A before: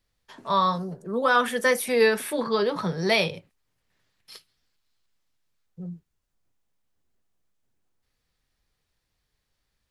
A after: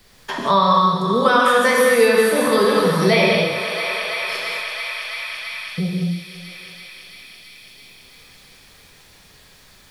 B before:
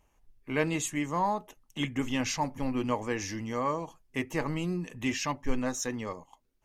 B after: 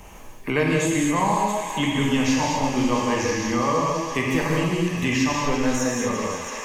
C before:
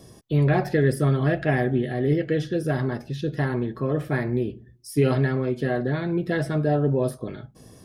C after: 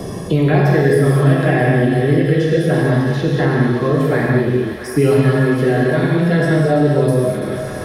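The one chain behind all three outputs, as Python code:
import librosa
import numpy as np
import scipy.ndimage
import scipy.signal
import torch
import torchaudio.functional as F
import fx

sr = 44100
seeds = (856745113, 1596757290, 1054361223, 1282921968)

p1 = x + fx.echo_thinned(x, sr, ms=333, feedback_pct=74, hz=740.0, wet_db=-11.5, dry=0)
p2 = fx.rev_gated(p1, sr, seeds[0], gate_ms=270, shape='flat', drr_db=-3.5)
p3 = fx.band_squash(p2, sr, depth_pct=70)
y = p3 * 10.0 ** (3.5 / 20.0)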